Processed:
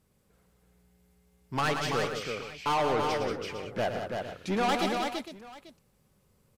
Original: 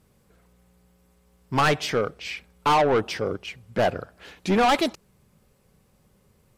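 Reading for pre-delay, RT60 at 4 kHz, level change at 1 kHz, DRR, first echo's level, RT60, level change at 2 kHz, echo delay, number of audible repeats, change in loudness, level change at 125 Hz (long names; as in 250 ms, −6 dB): no reverb audible, no reverb audible, −6.0 dB, no reverb audible, −8.0 dB, no reverb audible, −5.5 dB, 110 ms, 5, −6.5 dB, −6.0 dB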